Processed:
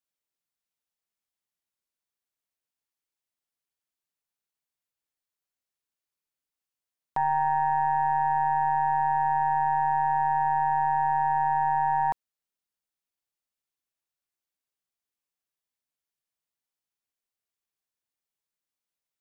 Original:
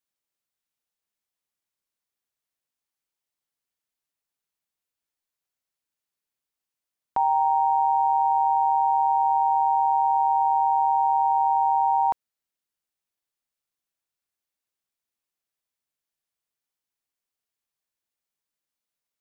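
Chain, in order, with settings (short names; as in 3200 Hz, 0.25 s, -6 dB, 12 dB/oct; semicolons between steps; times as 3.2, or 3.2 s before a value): tracing distortion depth 0.064 ms; gain -3.5 dB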